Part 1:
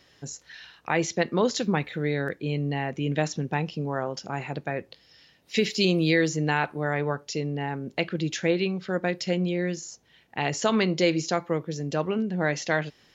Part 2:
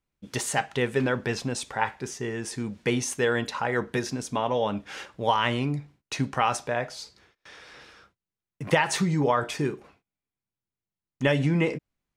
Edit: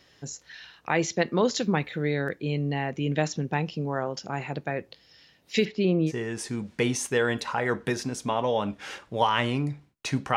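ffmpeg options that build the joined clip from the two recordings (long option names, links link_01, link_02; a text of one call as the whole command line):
ffmpeg -i cue0.wav -i cue1.wav -filter_complex "[0:a]asplit=3[link_01][link_02][link_03];[link_01]afade=type=out:start_time=5.64:duration=0.02[link_04];[link_02]lowpass=1600,afade=type=in:start_time=5.64:duration=0.02,afade=type=out:start_time=6.12:duration=0.02[link_05];[link_03]afade=type=in:start_time=6.12:duration=0.02[link_06];[link_04][link_05][link_06]amix=inputs=3:normalize=0,apad=whole_dur=10.36,atrim=end=10.36,atrim=end=6.12,asetpts=PTS-STARTPTS[link_07];[1:a]atrim=start=2.13:end=6.43,asetpts=PTS-STARTPTS[link_08];[link_07][link_08]acrossfade=duration=0.06:curve1=tri:curve2=tri" out.wav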